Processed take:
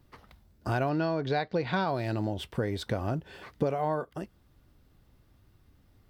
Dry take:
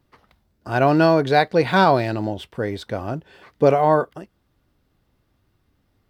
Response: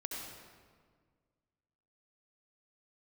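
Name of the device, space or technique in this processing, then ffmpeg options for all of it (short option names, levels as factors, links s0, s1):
ASMR close-microphone chain: -filter_complex "[0:a]asettb=1/sr,asplit=3[s0][s1][s2];[s0]atrim=end=0.894[s3];[s1]atrim=start=0.89:end=1.88,asetpts=PTS-STARTPTS,afade=t=in:d=0.004:c=qsin,afade=t=out:st=0.986:d=0.004:c=qsin,lowpass=f=5600:w=0.5412,lowpass=f=5600:w=1.3066[s4];[s2]atrim=start=1.876[s5];[s3][s4]acrossfade=d=0.004:c1=hsin:c2=qsin[s6];[s6][s5]acrossfade=d=0.004:c1=qsin:c2=hsin,lowshelf=f=140:g=7,acompressor=threshold=0.0501:ratio=8,highshelf=f=6300:g=4"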